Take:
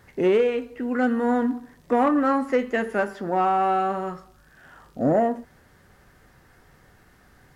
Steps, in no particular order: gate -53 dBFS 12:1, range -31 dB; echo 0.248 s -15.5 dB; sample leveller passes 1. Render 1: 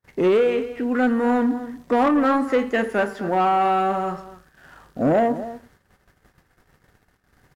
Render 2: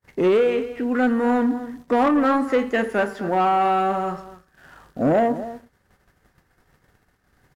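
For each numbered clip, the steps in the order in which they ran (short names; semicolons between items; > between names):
echo > sample leveller > gate; gate > echo > sample leveller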